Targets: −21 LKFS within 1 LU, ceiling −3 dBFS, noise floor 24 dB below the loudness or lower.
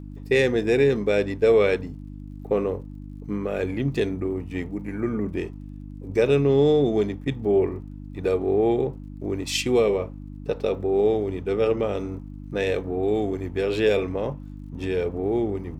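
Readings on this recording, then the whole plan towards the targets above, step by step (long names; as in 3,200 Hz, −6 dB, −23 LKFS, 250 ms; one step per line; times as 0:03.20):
crackle rate 42 per second; mains hum 50 Hz; hum harmonics up to 300 Hz; level of the hum −35 dBFS; integrated loudness −24.0 LKFS; sample peak −8.0 dBFS; target loudness −21.0 LKFS
→ click removal
hum removal 50 Hz, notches 6
level +3 dB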